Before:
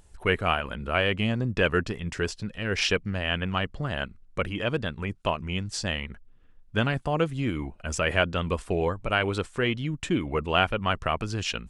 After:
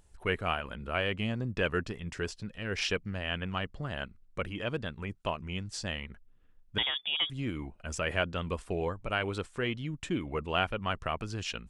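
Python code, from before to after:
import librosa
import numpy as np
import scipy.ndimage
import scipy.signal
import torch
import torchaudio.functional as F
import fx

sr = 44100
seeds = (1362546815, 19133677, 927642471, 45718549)

y = fx.freq_invert(x, sr, carrier_hz=3500, at=(6.78, 7.3))
y = F.gain(torch.from_numpy(y), -6.5).numpy()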